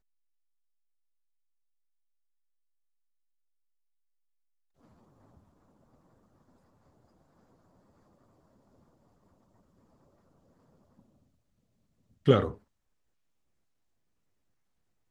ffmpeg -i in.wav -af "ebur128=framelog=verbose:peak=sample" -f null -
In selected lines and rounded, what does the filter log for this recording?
Integrated loudness:
  I:         -26.9 LUFS
  Threshold: -47.8 LUFS
Loudness range:
  LRA:         0.0 LU
  Threshold: -59.3 LUFS
  LRA low:   -33.9 LUFS
  LRA high:  -33.9 LUFS
Sample peak:
  Peak:       -7.2 dBFS